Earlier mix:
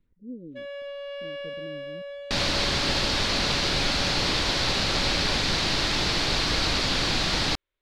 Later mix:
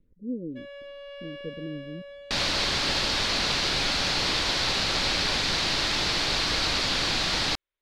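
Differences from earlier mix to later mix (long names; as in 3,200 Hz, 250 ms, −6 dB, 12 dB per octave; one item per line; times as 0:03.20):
speech +10.5 dB
first sound −4.0 dB
master: add low-shelf EQ 450 Hz −5.5 dB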